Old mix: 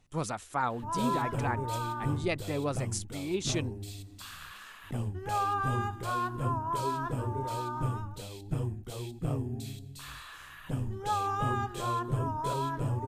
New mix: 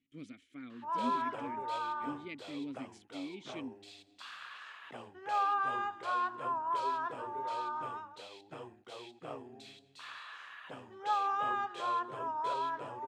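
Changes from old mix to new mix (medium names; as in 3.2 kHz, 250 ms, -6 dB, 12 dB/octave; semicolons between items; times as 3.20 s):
speech: add vowel filter i; background: add band-pass 590–3700 Hz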